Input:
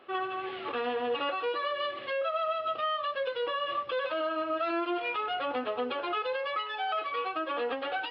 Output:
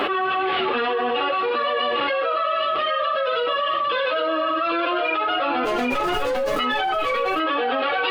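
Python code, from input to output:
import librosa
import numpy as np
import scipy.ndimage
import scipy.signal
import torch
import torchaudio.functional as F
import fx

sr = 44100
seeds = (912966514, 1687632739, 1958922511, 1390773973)

p1 = fx.median_filter(x, sr, points=41, at=(5.64, 6.59))
p2 = fx.peak_eq(p1, sr, hz=110.0, db=-6.0, octaves=0.43)
p3 = fx.rider(p2, sr, range_db=10, speed_s=0.5)
p4 = p2 + (p3 * librosa.db_to_amplitude(-3.0))
p5 = fx.chorus_voices(p4, sr, voices=4, hz=0.55, base_ms=10, depth_ms=3.3, mix_pct=50)
p6 = fx.doubler(p5, sr, ms=39.0, db=-13)
p7 = p6 + 10.0 ** (-6.0 / 20.0) * np.pad(p6, (int(799 * sr / 1000.0), 0))[:len(p6)]
p8 = fx.env_flatten(p7, sr, amount_pct=100)
y = p8 * librosa.db_to_amplitude(1.5)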